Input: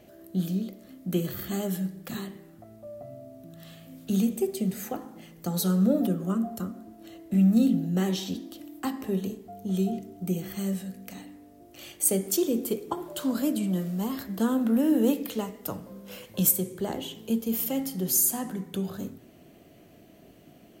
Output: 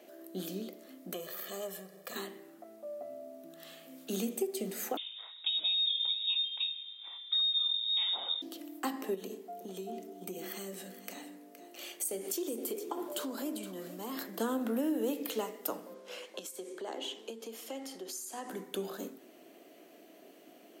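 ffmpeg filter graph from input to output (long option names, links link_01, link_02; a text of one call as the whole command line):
ffmpeg -i in.wav -filter_complex "[0:a]asettb=1/sr,asplit=3[link_01][link_02][link_03];[link_01]atrim=end=1.134[link_04];[link_02]atrim=start=1.13:end=2.16,asetpts=PTS-STARTPTS,afade=type=in:duration=0.004:curve=qsin,afade=type=out:start_time=1.026:duration=0.004:curve=qsin,aeval=exprs='if(lt(val(0),0),0.447*val(0),val(0))':channel_layout=same,aecho=1:1:1.7:0.84,atrim=end_sample=45423,acompressor=threshold=-37dB:ratio=2:attack=3.2:release=140:knee=1:detection=peak[link_05];[link_03]atrim=start=2.156[link_06];[link_04][link_05]acrossfade=duration=0.004:curve1=hsin:curve2=qsin[link_07];[link_07][link_06]acrossfade=duration=0.004:curve1=qsin:curve2=hsin,asettb=1/sr,asplit=3[link_08][link_09][link_10];[link_08]atrim=end=4.974[link_11];[link_09]atrim=start=4.97:end=8.42,asetpts=PTS-STARTPTS,afade=type=in:duration=0.004:curve=qsin,afade=type=out:start_time=3.446:duration=0.004:curve=qsin,lowpass=frequency=3300:width_type=q:width=0.5098,lowpass=frequency=3300:width_type=q:width=0.6013,lowpass=frequency=3300:width_type=q:width=0.9,lowpass=frequency=3300:width_type=q:width=2.563,afreqshift=-3900,bandreject=frequency=1800:width=14[link_12];[link_10]atrim=start=8.416[link_13];[link_11][link_12]acrossfade=duration=0.004:curve1=hsin:curve2=qsin[link_14];[link_14][link_13]acrossfade=duration=0.004:curve1=qsin:curve2=hsin,asettb=1/sr,asplit=3[link_15][link_16][link_17];[link_15]atrim=end=9.144[link_18];[link_16]atrim=start=9.14:end=14.34,asetpts=PTS-STARTPTS,afade=type=in:duration=0.004:curve=qsin,afade=type=out:start_time=5.196:duration=0.004:curve=qsin,acompressor=threshold=-31dB:ratio=6:attack=3.2:release=140:knee=1:detection=peak,aecho=1:1:467:0.211,atrim=end_sample=229320[link_19];[link_17]atrim=start=14.336[link_20];[link_18][link_19]acrossfade=duration=0.004:curve1=hsin:curve2=qsin[link_21];[link_21][link_20]acrossfade=duration=0.004:curve1=qsin:curve2=hsin,asettb=1/sr,asplit=3[link_22][link_23][link_24];[link_22]atrim=end=15.944[link_25];[link_23]atrim=start=15.94:end=18.49,asetpts=PTS-STARTPTS,afade=type=in:duration=0.004:curve=qsin,afade=type=out:start_time=2.546:duration=0.004:curve=qsin,acompressor=threshold=-32dB:ratio=8:attack=3.2:release=140:knee=1:detection=peak,highpass=300,lowpass=7300[link_26];[link_24]atrim=start=18.486[link_27];[link_25][link_26]acrossfade=duration=0.004:curve1=hsin:curve2=qsin[link_28];[link_28][link_27]acrossfade=duration=0.004:curve1=qsin:curve2=hsin,highpass=frequency=290:width=0.5412,highpass=frequency=290:width=1.3066,acompressor=threshold=-29dB:ratio=6" out.wav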